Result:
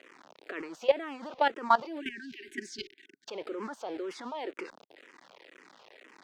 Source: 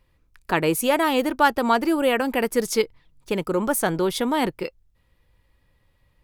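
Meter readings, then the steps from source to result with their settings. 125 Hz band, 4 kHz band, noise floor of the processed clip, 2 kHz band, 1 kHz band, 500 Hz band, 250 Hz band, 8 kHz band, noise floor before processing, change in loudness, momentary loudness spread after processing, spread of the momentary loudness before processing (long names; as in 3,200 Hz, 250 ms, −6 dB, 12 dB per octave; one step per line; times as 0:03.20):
below −25 dB, −12.0 dB, −64 dBFS, −12.0 dB, −8.0 dB, −10.5 dB, −17.5 dB, −22.0 dB, −65 dBFS, −11.0 dB, 17 LU, 8 LU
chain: converter with a step at zero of −27 dBFS
high-pass filter 320 Hz 24 dB per octave
output level in coarse steps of 17 dB
time-frequency box erased 0:02.00–0:03.28, 430–1,500 Hz
high-frequency loss of the air 150 metres
frequency shifter mixed with the dry sound −2 Hz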